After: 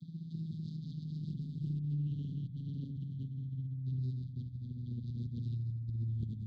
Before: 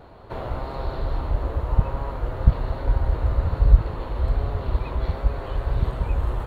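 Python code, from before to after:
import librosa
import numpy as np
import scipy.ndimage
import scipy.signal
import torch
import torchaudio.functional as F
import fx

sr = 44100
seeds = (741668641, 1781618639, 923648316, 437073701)

p1 = fx.vocoder_glide(x, sr, note=52, semitones=-7)
p2 = fx.peak_eq(p1, sr, hz=760.0, db=5.5, octaves=0.75)
p3 = fx.over_compress(p2, sr, threshold_db=-40.0, ratio=-1.0)
p4 = fx.brickwall_bandstop(p3, sr, low_hz=270.0, high_hz=3200.0)
p5 = p4 + fx.echo_bbd(p4, sr, ms=61, stages=1024, feedback_pct=64, wet_db=-7, dry=0)
p6 = fx.doppler_dist(p5, sr, depth_ms=0.41)
y = F.gain(torch.from_numpy(p6), 2.5).numpy()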